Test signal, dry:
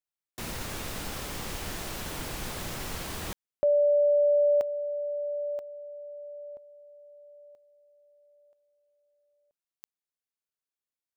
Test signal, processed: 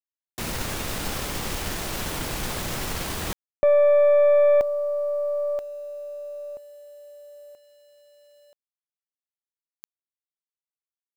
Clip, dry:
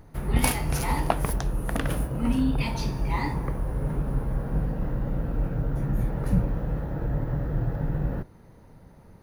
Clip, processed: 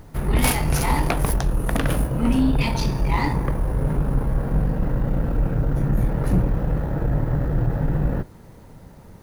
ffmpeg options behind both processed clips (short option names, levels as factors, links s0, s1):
-af "acrusher=bits=10:mix=0:aa=0.000001,aeval=exprs='0.531*sin(PI/2*2.82*val(0)/0.531)':c=same,aeval=exprs='0.562*(cos(1*acos(clip(val(0)/0.562,-1,1)))-cos(1*PI/2))+0.0447*(cos(4*acos(clip(val(0)/0.562,-1,1)))-cos(4*PI/2))':c=same,volume=0.473"